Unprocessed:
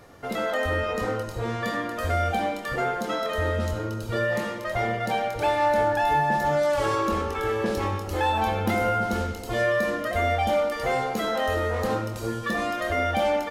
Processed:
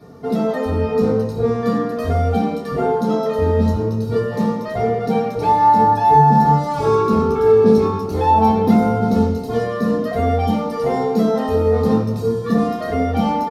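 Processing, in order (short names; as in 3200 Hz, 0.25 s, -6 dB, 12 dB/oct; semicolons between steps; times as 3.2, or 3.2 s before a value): comb 4.4 ms, depth 57%; reverb RT60 0.30 s, pre-delay 3 ms, DRR -7 dB; gain -11 dB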